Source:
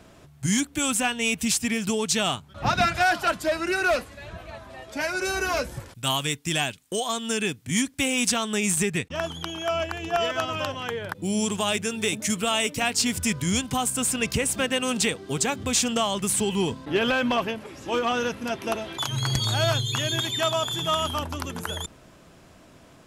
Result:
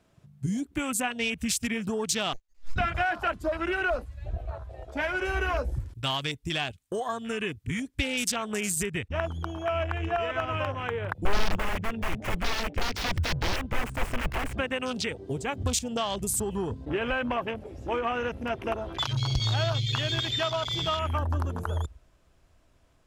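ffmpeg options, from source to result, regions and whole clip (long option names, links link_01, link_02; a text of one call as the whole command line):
ffmpeg -i in.wav -filter_complex "[0:a]asettb=1/sr,asplit=3[link_01][link_02][link_03];[link_01]atrim=end=2.334[link_04];[link_02]atrim=start=2.33:end=2.76,asetpts=PTS-STARTPTS,afade=type=in:duration=0.004:curve=qsin,afade=type=out:start_time=0.426:duration=0.004:curve=qsin,bandpass=frequency=3400:width_type=q:width=2.6,aemphasis=mode=reproduction:type=50kf,aeval=exprs='abs(val(0))':channel_layout=same[link_05];[link_03]atrim=start=2.756[link_06];[link_04][link_05]acrossfade=duration=0.004:curve1=hsin:curve2=qsin[link_07];[link_07][link_06]acrossfade=duration=0.004:curve1=qsin:curve2=hsin,asettb=1/sr,asplit=3[link_08][link_09][link_10];[link_08]atrim=end=11.254[link_11];[link_09]atrim=start=11.25:end=14.58,asetpts=PTS-STARTPTS,afade=type=in:duration=0.004:curve=qsin,afade=type=out:start_time=3.326:duration=0.004:curve=qsin,equalizer=frequency=150:width_type=o:width=0.48:gain=4,adynamicsmooth=sensitivity=3.5:basefreq=3100,aeval=exprs='(mod(15*val(0)+1,2)-1)/15':channel_layout=same[link_12];[link_10]atrim=start=14.576[link_13];[link_11][link_12]acrossfade=duration=0.004:curve1=hsin:curve2=qsin[link_14];[link_14][link_13]acrossfade=duration=0.004:curve1=qsin:curve2=hsin,acompressor=threshold=-26dB:ratio=4,afwtdn=0.0178,asubboost=boost=8:cutoff=62,volume=1.5dB" out.wav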